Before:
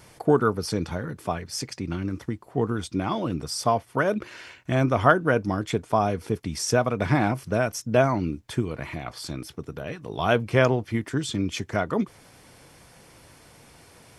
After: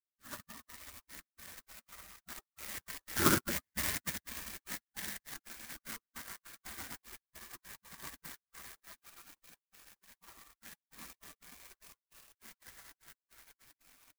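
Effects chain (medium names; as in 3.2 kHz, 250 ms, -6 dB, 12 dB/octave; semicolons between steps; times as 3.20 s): Doppler pass-by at 3.32 s, 47 m/s, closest 5.5 m; delay 123 ms -5 dB; vibrato 9.1 Hz 6.4 cents; steep low-pass 2.4 kHz 96 dB/octave; in parallel at +1 dB: compression 6:1, threshold -46 dBFS, peak gain reduction 23.5 dB; on the sum: peaking EQ 400 Hz +6.5 dB 0.59 oct; FDN reverb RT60 3.3 s, high-frequency decay 0.45×, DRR -8 dB; trance gate "..xx.x.xxx.x" 151 bpm -60 dB; FFT filter 140 Hz 0 dB, 260 Hz -10 dB, 690 Hz +15 dB, 1.2 kHz +8 dB; spectral gate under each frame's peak -30 dB weak; reverse; upward compressor, threshold -54 dBFS; reverse; sampling jitter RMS 0.11 ms; trim +8 dB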